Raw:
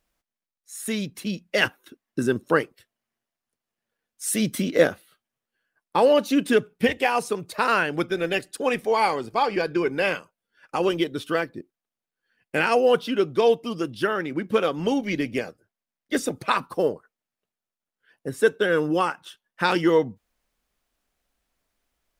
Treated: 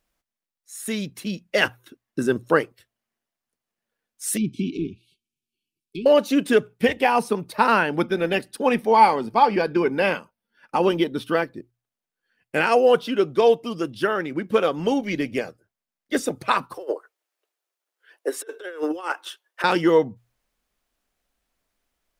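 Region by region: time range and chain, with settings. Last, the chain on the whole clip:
4.37–6.06 de-esser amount 90% + treble ducked by the level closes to 2100 Hz, closed at -19.5 dBFS + brick-wall FIR band-stop 420–2200 Hz
6.96–11.44 bell 7200 Hz -9 dB 0.3 oct + small resonant body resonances 220/890 Hz, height 9 dB
16.74–19.64 steep high-pass 320 Hz 48 dB/oct + negative-ratio compressor -28 dBFS, ratio -0.5
whole clip: notches 60/120 Hz; dynamic EQ 690 Hz, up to +3 dB, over -28 dBFS, Q 0.73

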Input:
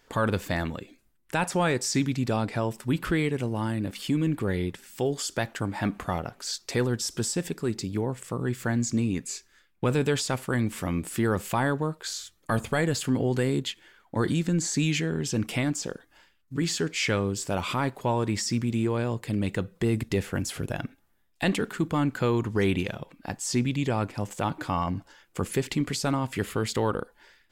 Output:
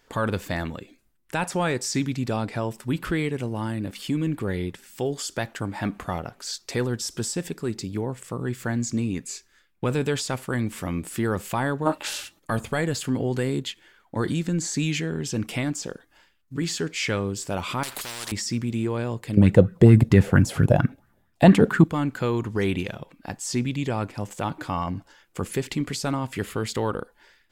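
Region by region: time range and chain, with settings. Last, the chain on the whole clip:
11.85–12.38 spectral limiter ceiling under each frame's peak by 18 dB + dynamic EQ 2300 Hz, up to +7 dB, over -49 dBFS, Q 0.85 + small resonant body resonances 280/590/830/2700 Hz, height 15 dB, ringing for 35 ms
17.83–18.32 sample leveller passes 1 + spectral compressor 10:1
19.37–21.84 bell 130 Hz +15 dB 2.7 oct + LFO bell 4.4 Hz 520–1700 Hz +15 dB
whole clip: dry

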